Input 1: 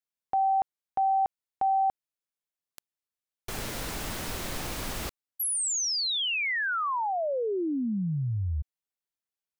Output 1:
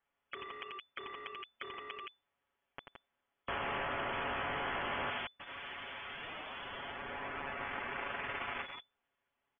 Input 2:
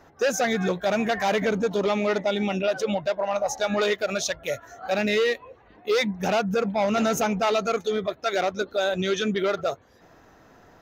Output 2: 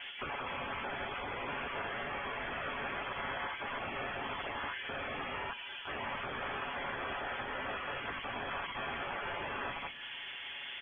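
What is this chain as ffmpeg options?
-filter_complex "[0:a]equalizer=f=69:w=2:g=2.5,asplit=2[a][b];[b]aecho=0:1:87.46|169.1:0.316|0.316[c];[a][c]amix=inputs=2:normalize=0,acrusher=bits=4:mode=log:mix=0:aa=0.000001,acrossover=split=820|2400[d][e][f];[d]acompressor=threshold=-39dB:ratio=4[g];[e]acompressor=threshold=-32dB:ratio=4[h];[f]acompressor=threshold=-40dB:ratio=4[i];[g][h][i]amix=inputs=3:normalize=0,aecho=1:1:6.8:0.85,afftfilt=real='re*lt(hypot(re,im),0.0251)':imag='im*lt(hypot(re,im),0.0251)':win_size=1024:overlap=0.75,crystalizer=i=6:c=0,lowpass=f=3k:t=q:w=0.5098,lowpass=f=3k:t=q:w=0.6013,lowpass=f=3k:t=q:w=0.9,lowpass=f=3k:t=q:w=2.563,afreqshift=-3500,asplit=2[j][k];[k]acompressor=threshold=-52dB:ratio=6:attack=0.63:release=30:knee=1:detection=peak,volume=0dB[l];[j][l]amix=inputs=2:normalize=0,volume=1dB"

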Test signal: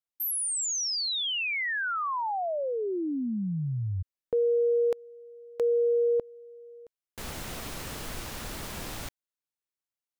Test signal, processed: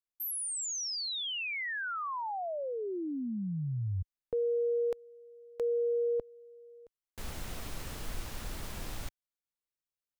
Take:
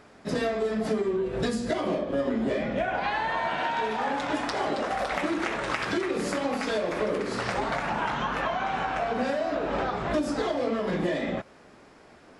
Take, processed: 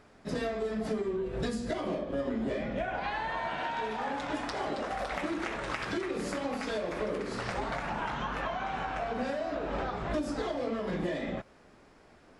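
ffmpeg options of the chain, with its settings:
-af "lowshelf=f=67:g=11.5,volume=-6dB"

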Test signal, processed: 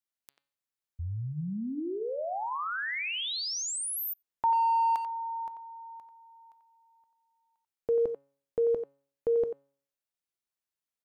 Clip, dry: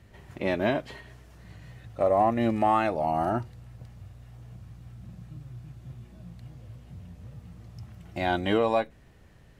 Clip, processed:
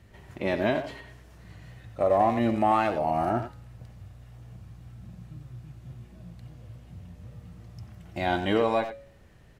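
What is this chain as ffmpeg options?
-filter_complex "[0:a]bandreject=f=139.2:t=h:w=4,bandreject=f=278.4:t=h:w=4,bandreject=f=417.6:t=h:w=4,bandreject=f=556.8:t=h:w=4,bandreject=f=696:t=h:w=4,bandreject=f=835.2:t=h:w=4,bandreject=f=974.4:t=h:w=4,bandreject=f=1.1136k:t=h:w=4,bandreject=f=1.2528k:t=h:w=4,bandreject=f=1.392k:t=h:w=4,bandreject=f=1.5312k:t=h:w=4,bandreject=f=1.6704k:t=h:w=4,bandreject=f=1.8096k:t=h:w=4,bandreject=f=1.9488k:t=h:w=4,bandreject=f=2.088k:t=h:w=4,bandreject=f=2.2272k:t=h:w=4,bandreject=f=2.3664k:t=h:w=4,bandreject=f=2.5056k:t=h:w=4,bandreject=f=2.6448k:t=h:w=4,bandreject=f=2.784k:t=h:w=4,bandreject=f=2.9232k:t=h:w=4,bandreject=f=3.0624k:t=h:w=4,bandreject=f=3.2016k:t=h:w=4,bandreject=f=3.3408k:t=h:w=4,bandreject=f=3.48k:t=h:w=4,bandreject=f=3.6192k:t=h:w=4,bandreject=f=3.7584k:t=h:w=4,bandreject=f=3.8976k:t=h:w=4,bandreject=f=4.0368k:t=h:w=4,bandreject=f=4.176k:t=h:w=4,bandreject=f=4.3152k:t=h:w=4,bandreject=f=4.4544k:t=h:w=4,bandreject=f=4.5936k:t=h:w=4,bandreject=f=4.7328k:t=h:w=4,asplit=2[a][b];[b]adelay=90,highpass=300,lowpass=3.4k,asoftclip=type=hard:threshold=-22.5dB,volume=-8dB[c];[a][c]amix=inputs=2:normalize=0"

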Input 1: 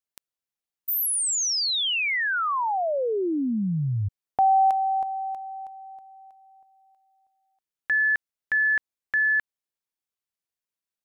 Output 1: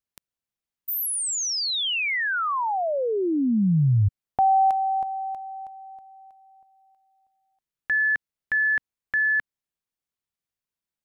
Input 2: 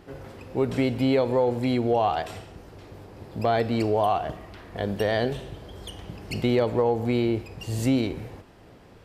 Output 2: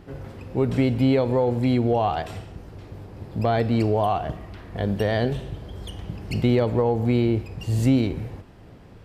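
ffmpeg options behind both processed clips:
-af "bass=f=250:g=7,treble=f=4k:g=-2"

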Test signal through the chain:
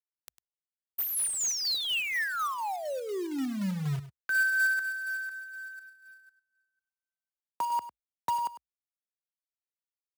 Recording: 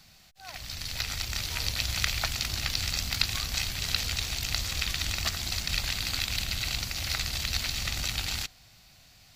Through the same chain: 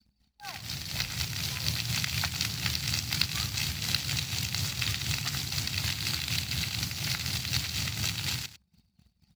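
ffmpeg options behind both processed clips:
-filter_complex "[0:a]tremolo=f=4.1:d=0.51,adynamicequalizer=threshold=0.00355:dfrequency=500:dqfactor=0.84:tfrequency=500:tqfactor=0.84:attack=5:release=100:ratio=0.375:range=2.5:mode=cutabove:tftype=bell,asplit=2[a][b];[b]acompressor=threshold=-44dB:ratio=8,volume=-2dB[c];[a][c]amix=inputs=2:normalize=0,afreqshift=54,anlmdn=0.0251,acrusher=bits=3:mode=log:mix=0:aa=0.000001,asplit=2[d][e];[e]aecho=0:1:101:0.2[f];[d][f]amix=inputs=2:normalize=0"

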